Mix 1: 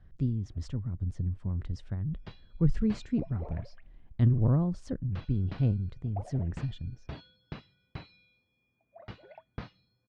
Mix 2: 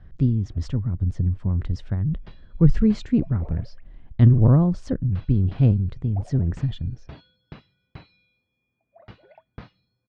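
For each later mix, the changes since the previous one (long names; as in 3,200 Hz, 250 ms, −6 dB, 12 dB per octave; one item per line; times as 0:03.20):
speech +9.5 dB
master: add high-frequency loss of the air 56 metres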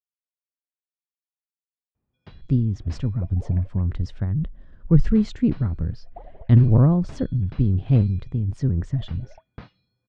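speech: entry +2.30 s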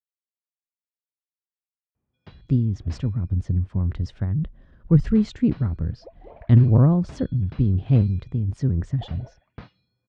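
second sound: entry +2.85 s
master: add high-pass filter 40 Hz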